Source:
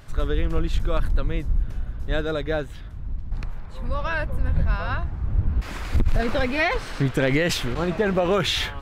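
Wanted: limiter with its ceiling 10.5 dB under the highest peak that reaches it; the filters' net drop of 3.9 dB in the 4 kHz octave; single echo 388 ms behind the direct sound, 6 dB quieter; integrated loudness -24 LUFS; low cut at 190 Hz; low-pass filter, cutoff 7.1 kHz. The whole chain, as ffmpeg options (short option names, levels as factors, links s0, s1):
-af "highpass=190,lowpass=7100,equalizer=f=4000:t=o:g=-4.5,alimiter=limit=0.119:level=0:latency=1,aecho=1:1:388:0.501,volume=2"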